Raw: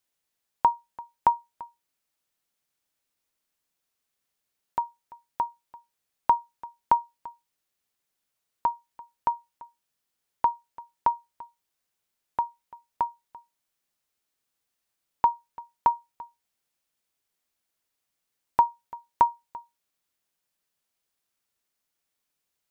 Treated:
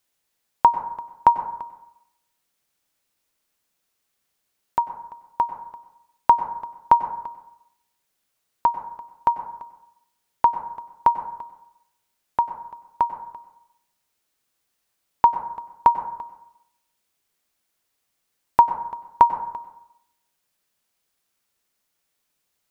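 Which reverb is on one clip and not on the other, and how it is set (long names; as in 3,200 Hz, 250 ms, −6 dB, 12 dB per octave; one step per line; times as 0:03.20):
dense smooth reverb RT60 0.78 s, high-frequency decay 0.35×, pre-delay 85 ms, DRR 10.5 dB
level +6 dB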